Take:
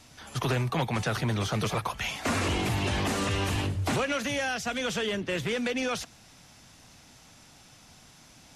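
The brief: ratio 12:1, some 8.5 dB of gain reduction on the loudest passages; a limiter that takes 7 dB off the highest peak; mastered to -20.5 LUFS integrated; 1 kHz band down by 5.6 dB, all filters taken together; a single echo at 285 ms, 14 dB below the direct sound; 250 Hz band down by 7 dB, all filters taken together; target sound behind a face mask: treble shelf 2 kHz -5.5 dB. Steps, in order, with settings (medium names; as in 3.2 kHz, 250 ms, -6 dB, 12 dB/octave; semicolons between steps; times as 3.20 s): peaking EQ 250 Hz -9 dB; peaking EQ 1 kHz -5.5 dB; compression 12:1, threshold -35 dBFS; peak limiter -32.5 dBFS; treble shelf 2 kHz -5.5 dB; delay 285 ms -14 dB; trim +22 dB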